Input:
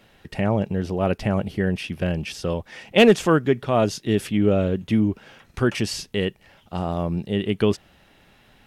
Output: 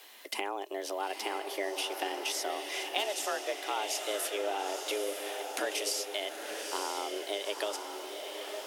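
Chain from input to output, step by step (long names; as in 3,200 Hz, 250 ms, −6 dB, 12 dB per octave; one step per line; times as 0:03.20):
RIAA equalisation recording
downward compressor 6 to 1, threshold −32 dBFS, peak gain reduction 21 dB
feedback delay with all-pass diffusion 915 ms, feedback 51%, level −5 dB
frequency shifter +200 Hz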